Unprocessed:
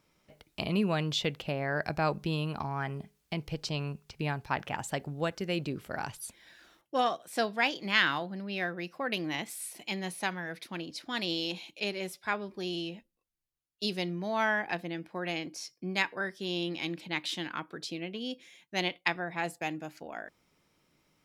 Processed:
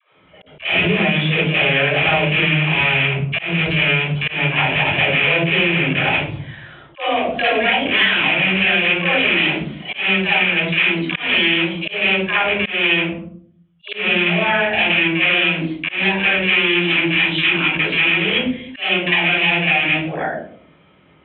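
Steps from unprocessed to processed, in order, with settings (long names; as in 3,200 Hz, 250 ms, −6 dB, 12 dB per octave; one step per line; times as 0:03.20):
loose part that buzzes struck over −43 dBFS, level −15 dBFS
high-pass filter 64 Hz
all-pass dispersion lows, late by 132 ms, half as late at 380 Hz
convolution reverb RT60 0.50 s, pre-delay 52 ms, DRR −10 dB
downward compressor, threshold −19 dBFS, peak gain reduction 11.5 dB
Butterworth low-pass 3,500 Hz 96 dB per octave
low-shelf EQ 340 Hz −5 dB
pitch vibrato 1.5 Hz 19 cents
dynamic equaliser 1,200 Hz, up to −6 dB, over −43 dBFS, Q 2.3
volume swells 184 ms
level +7.5 dB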